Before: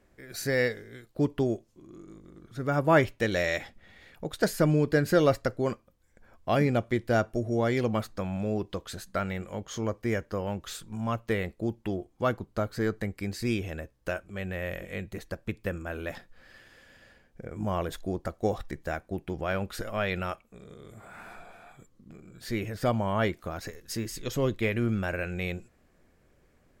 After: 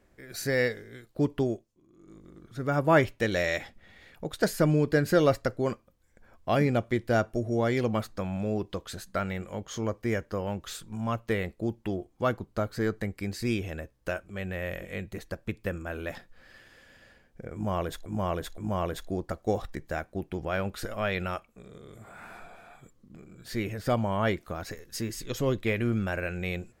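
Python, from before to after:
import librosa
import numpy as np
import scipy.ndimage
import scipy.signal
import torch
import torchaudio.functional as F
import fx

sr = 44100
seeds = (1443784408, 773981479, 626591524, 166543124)

y = fx.edit(x, sr, fx.fade_down_up(start_s=1.36, length_s=0.94, db=-12.0, fade_s=0.33, curve='qsin'),
    fx.repeat(start_s=17.54, length_s=0.52, count=3), tone=tone)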